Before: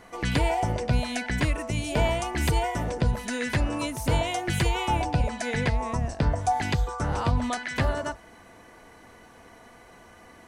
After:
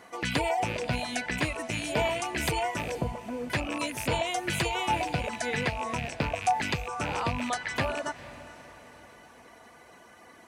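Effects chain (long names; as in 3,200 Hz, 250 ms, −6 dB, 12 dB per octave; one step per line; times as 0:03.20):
loose part that buzzes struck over −34 dBFS, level −22 dBFS
high-pass filter 260 Hz 6 dB per octave
reverb reduction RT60 0.53 s
0:02.95–0:03.50: Butterworth low-pass 1,100 Hz
feedback delay with all-pass diffusion 464 ms, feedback 46%, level −16 dB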